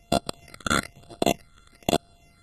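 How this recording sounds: a buzz of ramps at a fixed pitch in blocks of 64 samples; phasing stages 8, 1.1 Hz, lowest notch 710–2100 Hz; AAC

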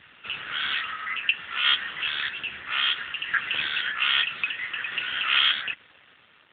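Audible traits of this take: tremolo saw down 0.61 Hz, depth 40%; a quantiser's noise floor 8-bit, dither none; AMR-NB

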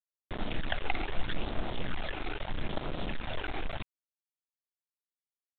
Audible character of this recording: phasing stages 12, 0.78 Hz, lowest notch 170–2700 Hz; a quantiser's noise floor 6-bit, dither none; µ-law

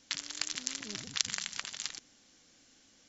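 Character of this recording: noise floor -64 dBFS; spectral tilt +0.5 dB/oct

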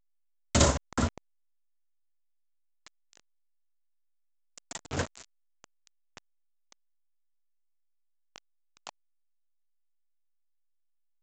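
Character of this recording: chopped level 3.3 Hz, depth 65%, duty 55%; a quantiser's noise floor 6-bit, dither none; A-law

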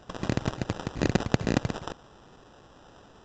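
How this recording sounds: aliases and images of a low sample rate 2200 Hz, jitter 0%; µ-law

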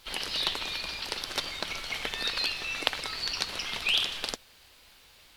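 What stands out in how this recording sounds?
a quantiser's noise floor 10-bit, dither none; Vorbis

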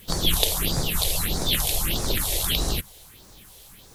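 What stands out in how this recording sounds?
phasing stages 4, 1.6 Hz, lowest notch 210–2900 Hz; a quantiser's noise floor 10-bit, dither triangular

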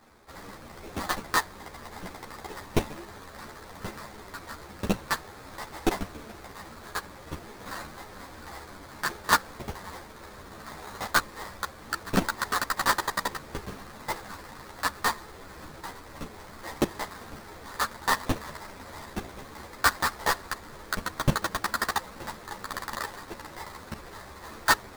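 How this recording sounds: aliases and images of a low sample rate 2900 Hz, jitter 20%; a shimmering, thickened sound

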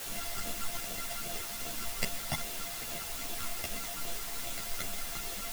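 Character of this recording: a buzz of ramps at a fixed pitch in blocks of 64 samples; phasing stages 12, 2.5 Hz, lowest notch 400–1800 Hz; a quantiser's noise floor 6-bit, dither triangular; a shimmering, thickened sound

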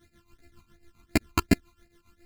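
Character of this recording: a buzz of ramps at a fixed pitch in blocks of 128 samples; phasing stages 12, 2.8 Hz, lowest notch 550–1100 Hz; tremolo triangle 7.3 Hz, depth 90%; a shimmering, thickened sound

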